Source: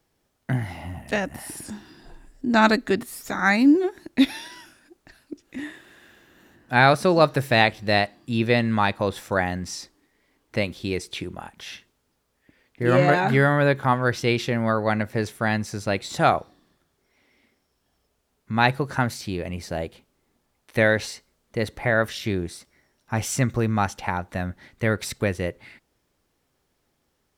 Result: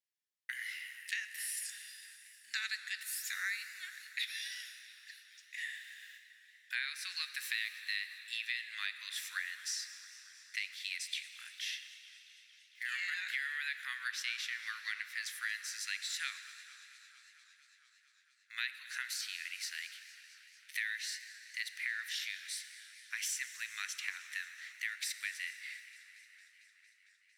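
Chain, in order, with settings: gate with hold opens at -42 dBFS; elliptic high-pass 1800 Hz, stop band 60 dB; compressor 5:1, threshold -37 dBFS, peak gain reduction 18.5 dB; plate-style reverb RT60 4 s, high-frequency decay 0.85×, DRR 10 dB; warbling echo 0.227 s, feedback 80%, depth 135 cents, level -20 dB; gain +1 dB

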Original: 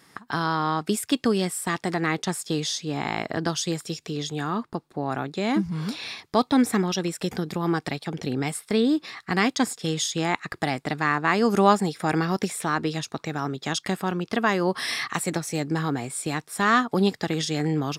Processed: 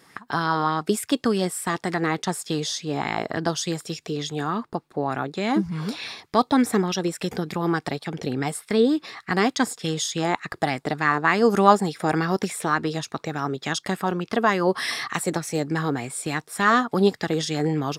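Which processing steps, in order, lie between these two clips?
dynamic EQ 2400 Hz, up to -4 dB, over -42 dBFS, Q 2.7; LFO bell 3.4 Hz 420–2500 Hz +7 dB

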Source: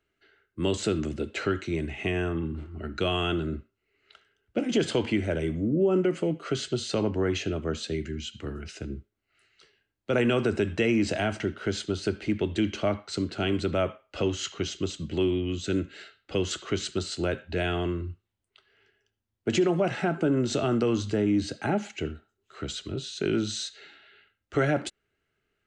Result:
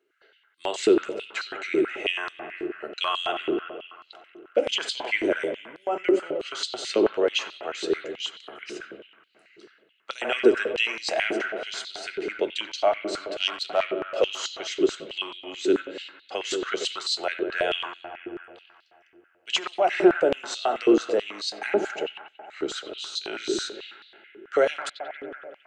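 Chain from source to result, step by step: 13.39–14.37 self-modulated delay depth 0.05 ms; analogue delay 92 ms, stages 2048, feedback 79%, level -10 dB; stepped high-pass 9.2 Hz 370–4100 Hz

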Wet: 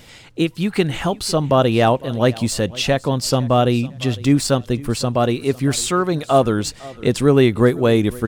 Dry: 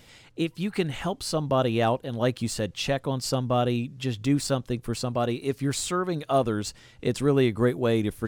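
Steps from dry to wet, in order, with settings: feedback echo 0.505 s, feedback 29%, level -21 dB; gain +8.5 dB

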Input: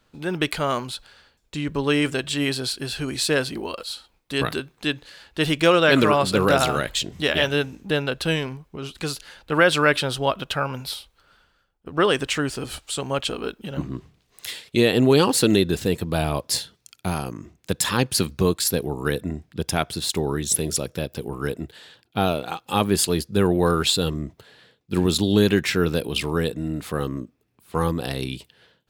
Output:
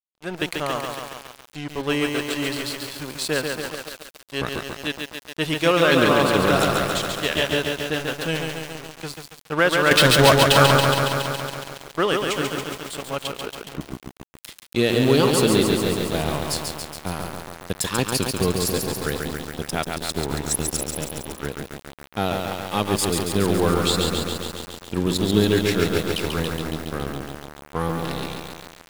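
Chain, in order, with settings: crossover distortion -31 dBFS; 9.91–10.83 sample leveller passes 5; lo-fi delay 0.139 s, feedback 80%, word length 6-bit, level -3.5 dB; gain -1 dB

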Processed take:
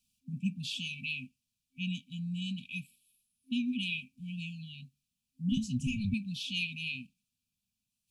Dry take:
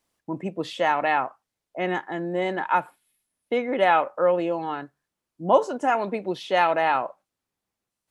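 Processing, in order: 5.51–6.14 octaver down 1 oct, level -1 dB; FFT band-reject 260–2300 Hz; dynamic EQ 410 Hz, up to +4 dB, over -50 dBFS, Q 1.7

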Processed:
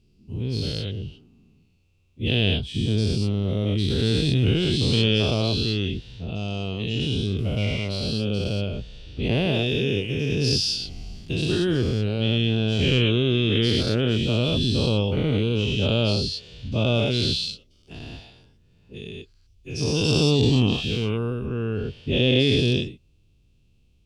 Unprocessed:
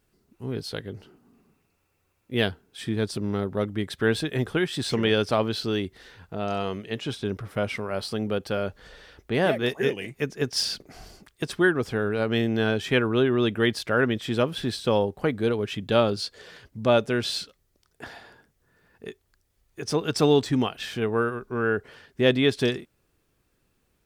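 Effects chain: spectral dilation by 0.24 s; EQ curve 100 Hz 0 dB, 1800 Hz -28 dB, 2700 Hz -6 dB, 6000 Hz -13 dB, 14000 Hz -26 dB; gain +7 dB

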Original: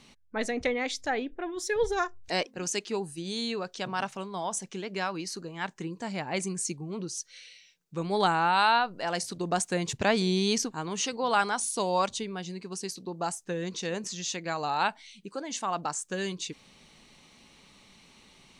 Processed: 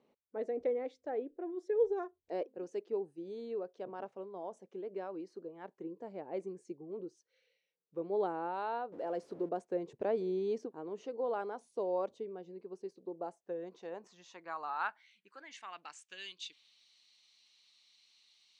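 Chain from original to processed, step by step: 8.92–9.49 zero-crossing step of -34 dBFS; dynamic EQ 330 Hz, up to +6 dB, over -45 dBFS, Q 1.6; band-pass sweep 490 Hz -> 4300 Hz, 13.16–16.86; gain -4.5 dB

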